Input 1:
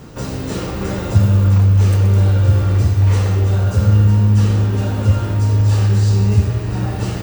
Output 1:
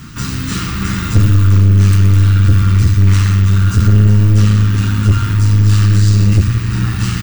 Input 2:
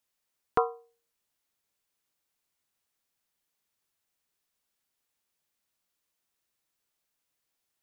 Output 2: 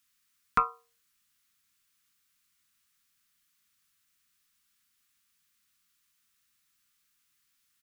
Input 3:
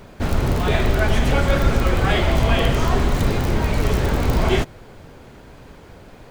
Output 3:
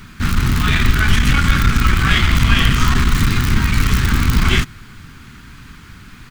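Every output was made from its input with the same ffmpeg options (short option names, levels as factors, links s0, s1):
-af "firequalizer=gain_entry='entry(230,0);entry(540,-25);entry(1200,3)':delay=0.05:min_phase=1,aeval=exprs='(tanh(3.55*val(0)+0.45)-tanh(0.45))/3.55':c=same,volume=2.24"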